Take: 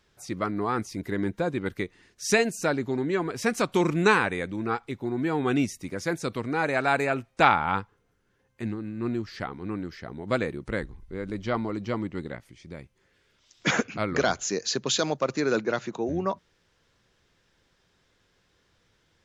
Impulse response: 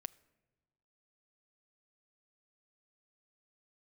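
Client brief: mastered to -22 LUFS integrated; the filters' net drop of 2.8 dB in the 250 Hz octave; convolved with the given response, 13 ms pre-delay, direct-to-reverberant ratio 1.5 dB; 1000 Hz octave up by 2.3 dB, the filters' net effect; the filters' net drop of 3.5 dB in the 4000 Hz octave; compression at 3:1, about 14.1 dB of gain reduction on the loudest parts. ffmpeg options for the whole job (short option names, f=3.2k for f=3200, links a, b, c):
-filter_complex "[0:a]equalizer=f=250:t=o:g=-4,equalizer=f=1k:t=o:g=3.5,equalizer=f=4k:t=o:g=-4.5,acompressor=threshold=-32dB:ratio=3,asplit=2[a][b];[1:a]atrim=start_sample=2205,adelay=13[c];[b][c]afir=irnorm=-1:irlink=0,volume=2.5dB[d];[a][d]amix=inputs=2:normalize=0,volume=11.5dB"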